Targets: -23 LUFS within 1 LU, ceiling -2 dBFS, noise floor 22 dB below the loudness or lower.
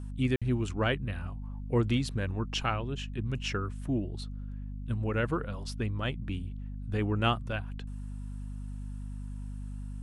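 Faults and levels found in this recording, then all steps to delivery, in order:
dropouts 1; longest dropout 56 ms; hum 50 Hz; highest harmonic 250 Hz; hum level -36 dBFS; loudness -33.5 LUFS; peak level -13.0 dBFS; loudness target -23.0 LUFS
-> interpolate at 0.36 s, 56 ms; hum notches 50/100/150/200/250 Hz; trim +10.5 dB

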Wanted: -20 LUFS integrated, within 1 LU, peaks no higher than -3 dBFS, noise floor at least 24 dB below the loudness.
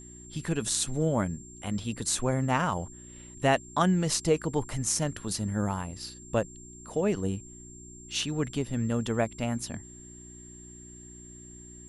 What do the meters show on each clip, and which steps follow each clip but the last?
hum 60 Hz; highest harmonic 360 Hz; hum level -49 dBFS; steady tone 7.4 kHz; tone level -48 dBFS; loudness -29.5 LUFS; peak level -9.5 dBFS; loudness target -20.0 LUFS
-> de-hum 60 Hz, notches 6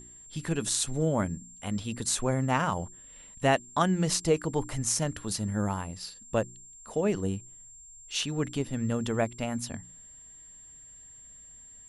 hum not found; steady tone 7.4 kHz; tone level -48 dBFS
-> band-stop 7.4 kHz, Q 30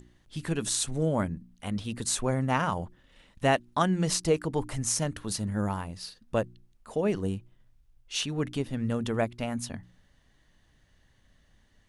steady tone not found; loudness -30.0 LUFS; peak level -10.0 dBFS; loudness target -20.0 LUFS
-> trim +10 dB; peak limiter -3 dBFS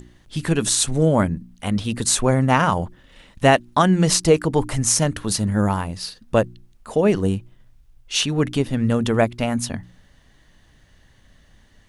loudness -20.0 LUFS; peak level -3.0 dBFS; noise floor -55 dBFS

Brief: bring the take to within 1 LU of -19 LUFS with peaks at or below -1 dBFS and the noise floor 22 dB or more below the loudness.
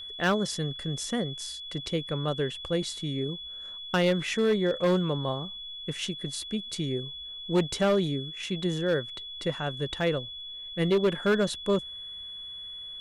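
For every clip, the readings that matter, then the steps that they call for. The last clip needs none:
clipped samples 0.9%; clipping level -18.5 dBFS; steady tone 3.4 kHz; tone level -38 dBFS; loudness -29.5 LUFS; peak level -18.5 dBFS; loudness target -19.0 LUFS
-> clip repair -18.5 dBFS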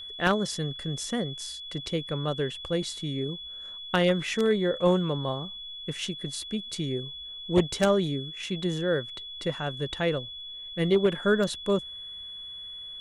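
clipped samples 0.0%; steady tone 3.4 kHz; tone level -38 dBFS
-> band-stop 3.4 kHz, Q 30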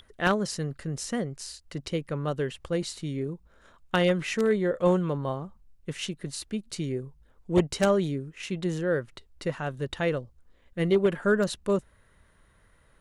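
steady tone not found; loudness -28.5 LUFS; peak level -9.0 dBFS; loudness target -19.0 LUFS
-> trim +9.5 dB; peak limiter -1 dBFS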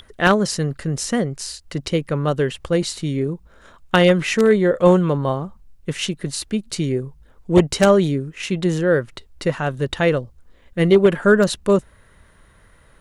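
loudness -19.0 LUFS; peak level -1.0 dBFS; noise floor -53 dBFS

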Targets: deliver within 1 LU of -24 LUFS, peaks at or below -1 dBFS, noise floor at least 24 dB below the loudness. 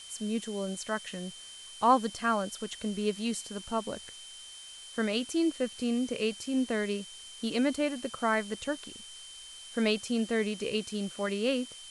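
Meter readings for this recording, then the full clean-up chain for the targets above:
steady tone 3.1 kHz; tone level -47 dBFS; noise floor -48 dBFS; noise floor target -56 dBFS; loudness -31.5 LUFS; peak level -11.0 dBFS; loudness target -24.0 LUFS
-> band-stop 3.1 kHz, Q 30; noise print and reduce 8 dB; trim +7.5 dB

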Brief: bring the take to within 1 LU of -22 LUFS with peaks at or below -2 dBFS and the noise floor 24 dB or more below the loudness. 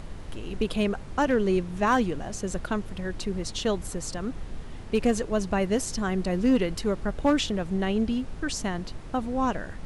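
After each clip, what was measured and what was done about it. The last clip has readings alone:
clipped samples 0.3%; clipping level -15.0 dBFS; noise floor -39 dBFS; noise floor target -52 dBFS; loudness -27.5 LUFS; peak level -15.0 dBFS; loudness target -22.0 LUFS
-> clip repair -15 dBFS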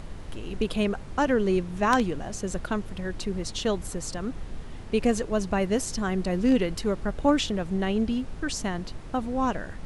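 clipped samples 0.0%; noise floor -39 dBFS; noise floor target -52 dBFS
-> noise print and reduce 13 dB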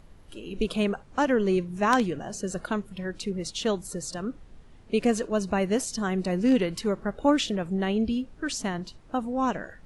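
noise floor -51 dBFS; noise floor target -52 dBFS
-> noise print and reduce 6 dB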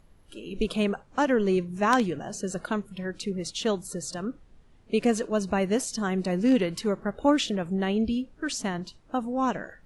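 noise floor -57 dBFS; loudness -27.5 LUFS; peak level -6.0 dBFS; loudness target -22.0 LUFS
-> trim +5.5 dB; peak limiter -2 dBFS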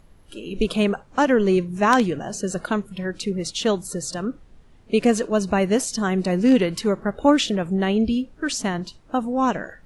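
loudness -22.0 LUFS; peak level -2.0 dBFS; noise floor -51 dBFS

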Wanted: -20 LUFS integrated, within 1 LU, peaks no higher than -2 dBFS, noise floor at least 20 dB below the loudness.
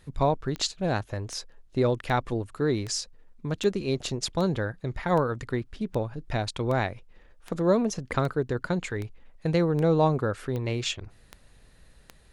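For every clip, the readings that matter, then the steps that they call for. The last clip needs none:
clicks found 16; loudness -28.0 LUFS; peak level -11.0 dBFS; loudness target -20.0 LUFS
-> de-click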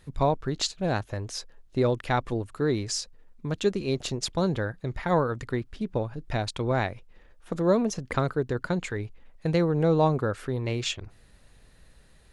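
clicks found 0; loudness -28.0 LUFS; peak level -11.0 dBFS; loudness target -20.0 LUFS
-> trim +8 dB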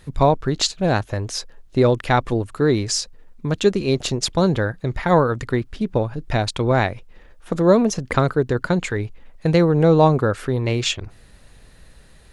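loudness -20.0 LUFS; peak level -3.0 dBFS; noise floor -48 dBFS

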